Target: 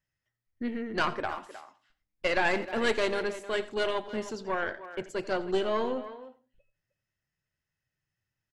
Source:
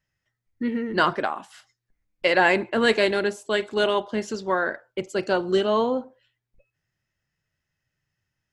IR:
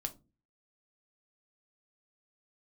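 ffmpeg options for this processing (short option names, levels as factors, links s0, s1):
-filter_complex "[0:a]aeval=exprs='(tanh(4.47*val(0)+0.7)-tanh(0.7))/4.47':c=same,asplit=2[s0][s1];[s1]adelay=310,highpass=300,lowpass=3400,asoftclip=type=hard:threshold=0.119,volume=0.224[s2];[s0][s2]amix=inputs=2:normalize=0,asplit=2[s3][s4];[1:a]atrim=start_sample=2205,adelay=85[s5];[s4][s5]afir=irnorm=-1:irlink=0,volume=0.158[s6];[s3][s6]amix=inputs=2:normalize=0,volume=0.708"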